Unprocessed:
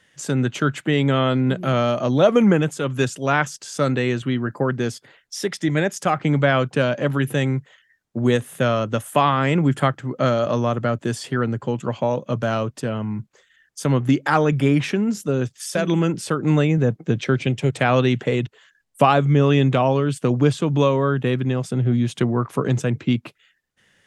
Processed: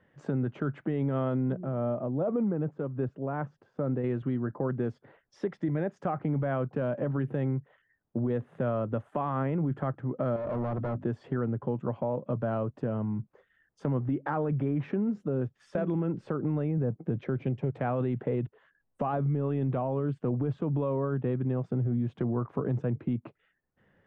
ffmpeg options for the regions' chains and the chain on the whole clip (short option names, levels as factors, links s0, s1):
-filter_complex "[0:a]asettb=1/sr,asplit=3[s0][s1][s2];[s0]atrim=end=1.524[s3];[s1]atrim=start=1.52:end=4.04,asetpts=PTS-STARTPTS,afade=t=in:d=0.004:c=qsin,afade=t=out:st=2.516:d=0.004:c=qsin,lowpass=f=1000:p=1,tremolo=f=2.5:d=0.54[s4];[s2]atrim=start=4.036[s5];[s3][s4]acrossfade=d=0.004:c1=hsin:c2=qsin[s6];[s6][s5]acrossfade=d=0.004:c1=qsin:c2=hsin,asettb=1/sr,asplit=3[s7][s8][s9];[s7]atrim=end=10.364[s10];[s8]atrim=start=10.36:end=11.04,asetpts=PTS-STARTPTS,afade=t=in:d=0.004:c=qsin,afade=t=out:st=0.676:d=0.004:c=qsin,bandreject=f=50:t=h:w=6,bandreject=f=100:t=h:w=6,bandreject=f=150:t=h:w=6,bandreject=f=200:t=h:w=6,bandreject=f=250:t=h:w=6,bandreject=f=300:t=h:w=6,asoftclip=type=hard:threshold=0.0562[s11];[s9]atrim=start=11.036[s12];[s10][s11]acrossfade=d=0.004:c1=hsin:c2=qsin[s13];[s13][s12]acrossfade=d=0.004:c1=qsin:c2=hsin,lowpass=1000,alimiter=limit=0.2:level=0:latency=1:release=10,acompressor=threshold=0.0251:ratio=2"